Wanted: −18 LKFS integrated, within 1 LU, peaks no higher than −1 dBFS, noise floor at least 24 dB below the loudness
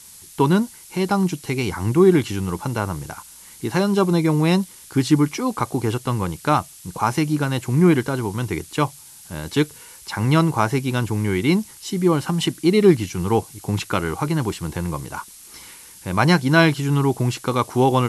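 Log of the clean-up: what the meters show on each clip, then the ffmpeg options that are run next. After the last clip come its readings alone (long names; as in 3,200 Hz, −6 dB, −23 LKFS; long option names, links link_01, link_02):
background noise floor −44 dBFS; target noise floor −45 dBFS; integrated loudness −20.5 LKFS; sample peak −2.5 dBFS; target loudness −18.0 LKFS
→ -af "afftdn=noise_reduction=6:noise_floor=-44"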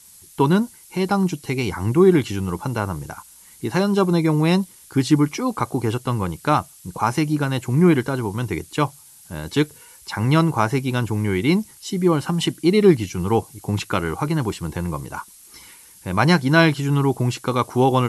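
background noise floor −47 dBFS; integrated loudness −20.5 LKFS; sample peak −2.5 dBFS; target loudness −18.0 LKFS
→ -af "volume=2.5dB,alimiter=limit=-1dB:level=0:latency=1"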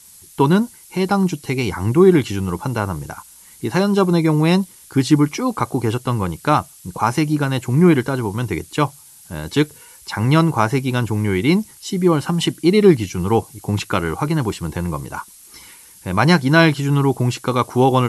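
integrated loudness −18.0 LKFS; sample peak −1.0 dBFS; background noise floor −45 dBFS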